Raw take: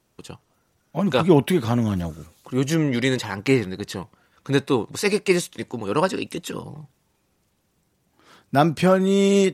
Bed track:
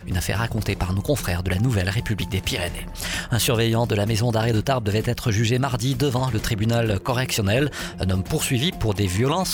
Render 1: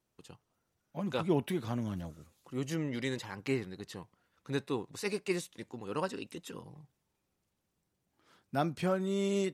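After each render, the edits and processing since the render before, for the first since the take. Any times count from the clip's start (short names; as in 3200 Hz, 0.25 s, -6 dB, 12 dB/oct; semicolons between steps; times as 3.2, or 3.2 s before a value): gain -14 dB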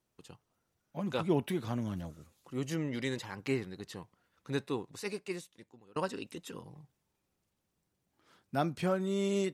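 4.63–5.96 fade out linear, to -24 dB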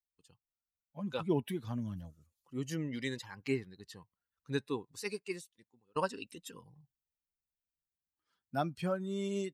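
per-bin expansion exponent 1.5; vocal rider 2 s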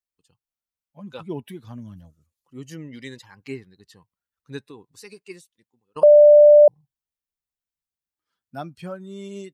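4.59–5.17 compressor, threshold -37 dBFS; 6.03–6.68 bleep 592 Hz -6.5 dBFS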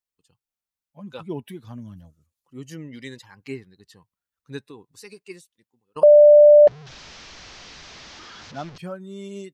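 6.67–8.78 delta modulation 32 kbps, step -36 dBFS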